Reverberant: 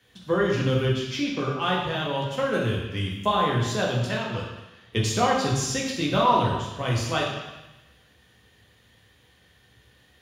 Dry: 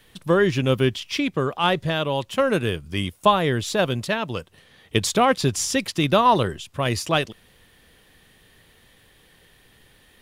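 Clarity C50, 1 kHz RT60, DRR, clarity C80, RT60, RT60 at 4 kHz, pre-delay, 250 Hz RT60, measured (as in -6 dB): 2.5 dB, 1.1 s, -3.5 dB, 4.5 dB, 1.0 s, 1.1 s, 3 ms, 0.95 s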